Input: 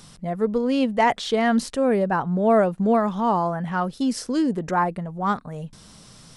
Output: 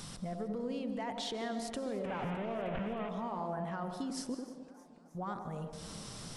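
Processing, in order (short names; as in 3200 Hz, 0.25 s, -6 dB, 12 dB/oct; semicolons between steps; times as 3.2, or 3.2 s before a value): 2.04–3.09 delta modulation 16 kbps, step -19 dBFS; limiter -19 dBFS, peak gain reduction 11.5 dB; compressor 4:1, threshold -41 dBFS, peak gain reduction 15.5 dB; 4.34–5.15 flipped gate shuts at -35 dBFS, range -26 dB; on a send: band-limited delay 94 ms, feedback 56%, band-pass 460 Hz, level -3.5 dB; on the sum: digital reverb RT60 0.94 s, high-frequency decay 0.85×, pre-delay 0.105 s, DRR 11.5 dB; warbling echo 0.309 s, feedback 64%, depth 134 cents, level -20.5 dB; gain +1 dB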